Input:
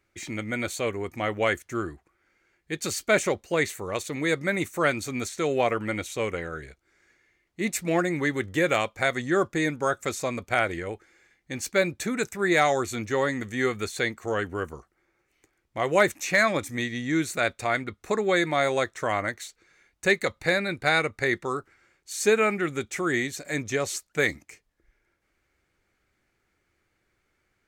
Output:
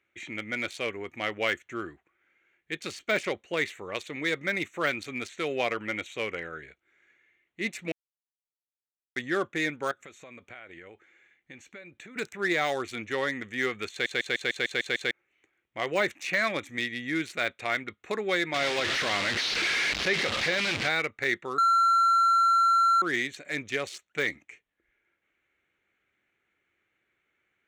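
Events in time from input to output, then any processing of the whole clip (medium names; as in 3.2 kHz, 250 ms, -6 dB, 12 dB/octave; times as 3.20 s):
7.92–9.16 s: mute
9.91–12.16 s: compression 12:1, threshold -38 dBFS
13.91 s: stutter in place 0.15 s, 8 plays
18.54–20.89 s: one-bit delta coder 32 kbps, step -20 dBFS
21.58–23.02 s: bleep 1.36 kHz -15.5 dBFS
whole clip: local Wiener filter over 9 samples; de-esser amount 85%; frequency weighting D; trim -5 dB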